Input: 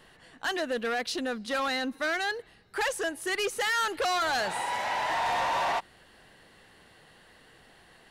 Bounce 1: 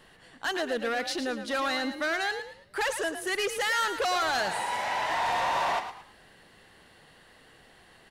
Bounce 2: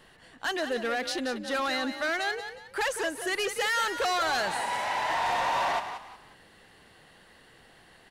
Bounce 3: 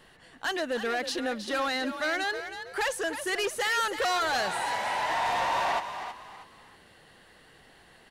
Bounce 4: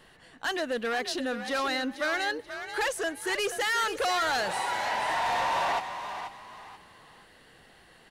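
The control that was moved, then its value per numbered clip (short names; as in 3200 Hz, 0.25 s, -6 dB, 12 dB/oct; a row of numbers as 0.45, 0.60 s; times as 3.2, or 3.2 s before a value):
frequency-shifting echo, time: 0.11, 0.181, 0.32, 0.483 s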